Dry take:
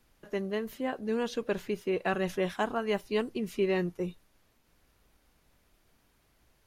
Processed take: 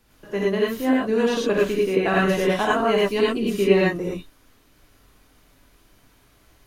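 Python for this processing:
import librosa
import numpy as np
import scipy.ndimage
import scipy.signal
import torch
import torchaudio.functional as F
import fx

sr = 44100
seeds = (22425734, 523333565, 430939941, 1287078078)

y = fx.rev_gated(x, sr, seeds[0], gate_ms=130, shape='rising', drr_db=-5.0)
y = F.gain(torch.from_numpy(y), 5.0).numpy()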